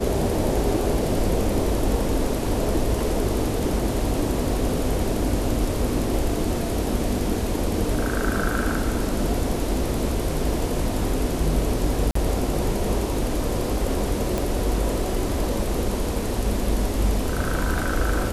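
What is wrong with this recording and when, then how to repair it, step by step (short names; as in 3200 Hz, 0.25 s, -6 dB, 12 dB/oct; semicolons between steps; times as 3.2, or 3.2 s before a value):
12.11–12.15 gap 44 ms
14.38 pop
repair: de-click; interpolate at 12.11, 44 ms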